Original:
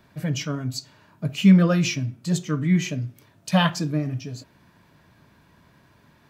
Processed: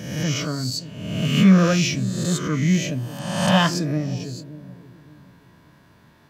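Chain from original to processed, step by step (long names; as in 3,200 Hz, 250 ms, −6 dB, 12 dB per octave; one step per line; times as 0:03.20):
peak hold with a rise ahead of every peak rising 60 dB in 1.10 s
notch filter 2,400 Hz, Q 23
bucket-brigade delay 575 ms, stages 2,048, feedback 31%, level −15 dB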